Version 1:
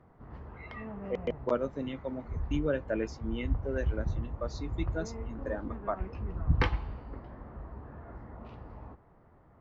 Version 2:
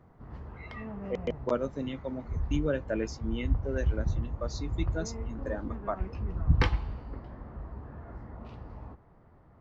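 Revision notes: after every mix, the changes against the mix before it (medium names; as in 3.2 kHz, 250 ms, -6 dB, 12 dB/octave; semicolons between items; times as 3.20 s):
master: add tone controls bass +3 dB, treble +8 dB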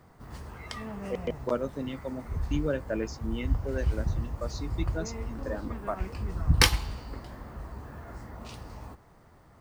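background: remove tape spacing loss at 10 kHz 41 dB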